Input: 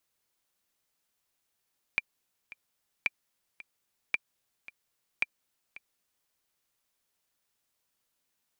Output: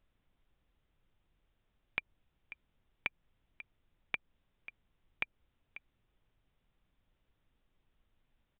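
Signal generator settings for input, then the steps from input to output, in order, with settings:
click track 111 BPM, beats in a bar 2, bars 4, 2,370 Hz, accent 19 dB −13 dBFS
downward compressor, threshold −32 dBFS
background noise brown −75 dBFS
downsampling to 8,000 Hz

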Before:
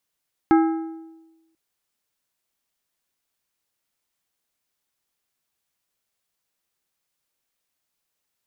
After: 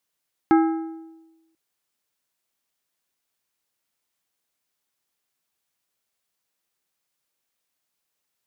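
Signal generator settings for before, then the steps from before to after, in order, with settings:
struck metal plate, length 1.04 s, lowest mode 325 Hz, modes 5, decay 1.12 s, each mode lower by 6.5 dB, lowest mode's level −11 dB
low-shelf EQ 79 Hz −7.5 dB

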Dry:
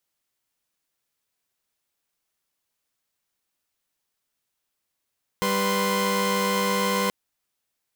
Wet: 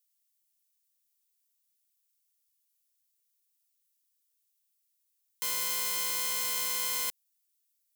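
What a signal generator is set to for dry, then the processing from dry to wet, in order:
held notes G3/B4/C6 saw, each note −23.5 dBFS 1.68 s
first difference

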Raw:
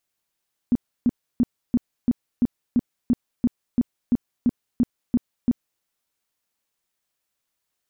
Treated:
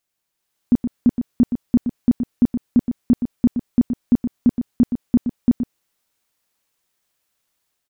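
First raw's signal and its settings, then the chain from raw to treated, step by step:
tone bursts 242 Hz, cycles 8, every 0.34 s, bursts 15, −14 dBFS
automatic gain control gain up to 6 dB
on a send: single-tap delay 121 ms −8.5 dB

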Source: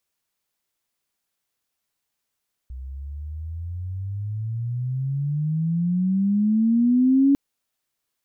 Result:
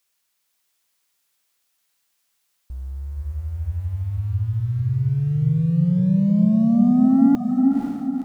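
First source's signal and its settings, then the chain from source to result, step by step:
pitch glide with a swell sine, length 4.65 s, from 62.8 Hz, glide +26 semitones, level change +19 dB, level −13 dB
leveller curve on the samples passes 1
on a send: feedback delay with all-pass diffusion 499 ms, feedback 44%, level −3.5 dB
on the sum: one half of a high-frequency compander encoder only

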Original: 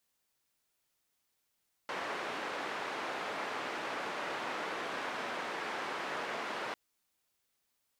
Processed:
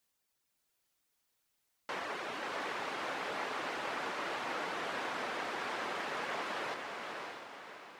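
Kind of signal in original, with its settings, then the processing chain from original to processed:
band-limited noise 310–1,600 Hz, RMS −38.5 dBFS 4.85 s
reverb reduction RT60 0.62 s
on a send: feedback delay with all-pass diffusion 592 ms, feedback 44%, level −3.5 dB

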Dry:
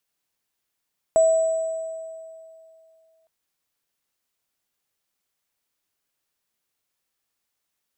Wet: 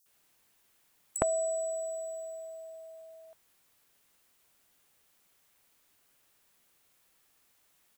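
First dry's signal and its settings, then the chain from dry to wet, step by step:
inharmonic partials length 2.11 s, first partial 648 Hz, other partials 7,880 Hz, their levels −16.5 dB, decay 2.55 s, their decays 1.98 s, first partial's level −12 dB
multiband delay without the direct sound highs, lows 60 ms, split 5,100 Hz
every bin compressed towards the loudest bin 2 to 1

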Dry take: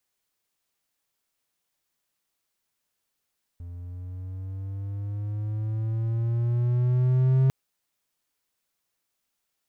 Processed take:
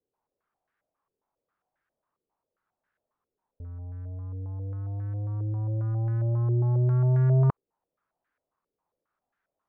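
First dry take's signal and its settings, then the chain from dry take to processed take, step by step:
pitch glide with a swell triangle, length 3.90 s, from 86.2 Hz, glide +7.5 semitones, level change +19.5 dB, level −14.5 dB
low-pass on a step sequencer 7.4 Hz 430–1,600 Hz

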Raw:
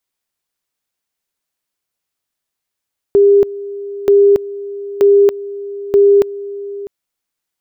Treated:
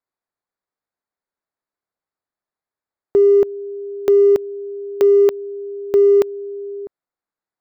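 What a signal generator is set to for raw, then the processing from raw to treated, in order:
tone at two levels in turn 402 Hz −5 dBFS, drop 17.5 dB, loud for 0.28 s, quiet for 0.65 s, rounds 4
adaptive Wiener filter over 15 samples
low-shelf EQ 280 Hz −8 dB

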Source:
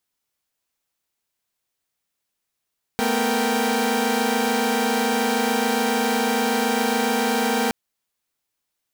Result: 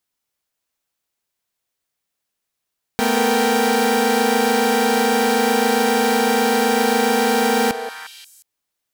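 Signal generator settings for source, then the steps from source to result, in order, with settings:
held notes A3/B3/A#4/G5 saw, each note −22.5 dBFS 4.72 s
in parallel at −6 dB: centre clipping without the shift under −25 dBFS
on the sum: echo through a band-pass that steps 178 ms, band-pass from 550 Hz, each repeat 1.4 octaves, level −5.5 dB

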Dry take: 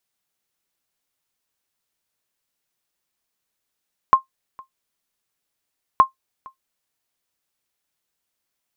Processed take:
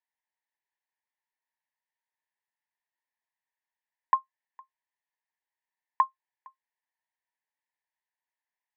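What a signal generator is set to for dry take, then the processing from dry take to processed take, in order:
ping with an echo 1,060 Hz, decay 0.12 s, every 1.87 s, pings 2, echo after 0.46 s, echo −27 dB −3 dBFS
pair of resonant band-passes 1,300 Hz, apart 0.94 octaves

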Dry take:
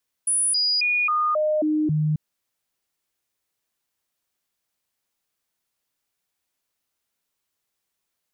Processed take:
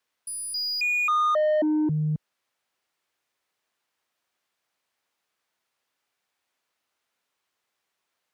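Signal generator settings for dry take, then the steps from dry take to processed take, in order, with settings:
stepped sweep 9,800 Hz down, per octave 1, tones 7, 0.27 s, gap 0.00 s −18.5 dBFS
high-pass filter 44 Hz
mid-hump overdrive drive 13 dB, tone 2,000 Hz, clips at −18 dBFS

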